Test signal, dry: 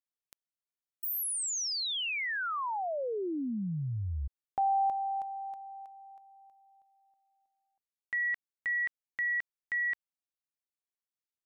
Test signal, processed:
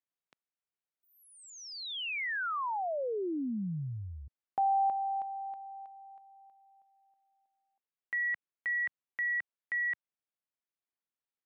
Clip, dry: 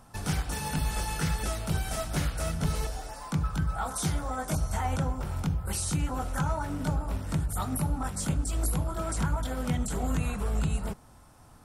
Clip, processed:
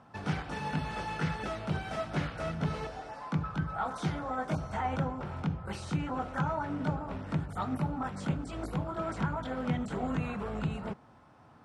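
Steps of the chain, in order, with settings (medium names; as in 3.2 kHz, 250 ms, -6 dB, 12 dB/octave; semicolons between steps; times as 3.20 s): band-pass 130–2800 Hz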